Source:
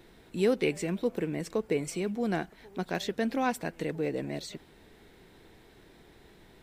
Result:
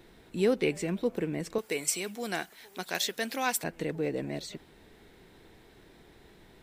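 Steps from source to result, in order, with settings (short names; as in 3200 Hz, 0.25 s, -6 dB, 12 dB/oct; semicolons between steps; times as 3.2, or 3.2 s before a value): 1.58–3.64 tilt +4 dB/oct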